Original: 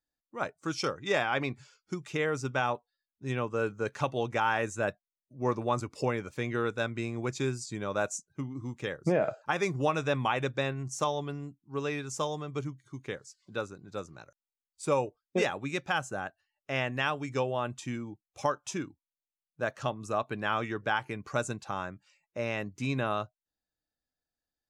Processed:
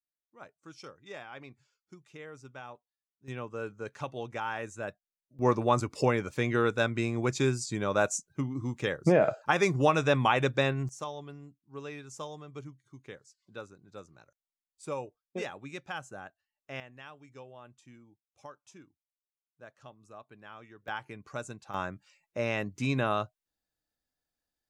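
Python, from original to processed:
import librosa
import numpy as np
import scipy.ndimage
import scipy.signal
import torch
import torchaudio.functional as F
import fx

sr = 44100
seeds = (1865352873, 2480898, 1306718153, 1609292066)

y = fx.gain(x, sr, db=fx.steps((0.0, -16.0), (3.28, -7.0), (5.39, 4.0), (10.89, -8.5), (16.8, -18.5), (20.88, -7.5), (21.74, 2.0)))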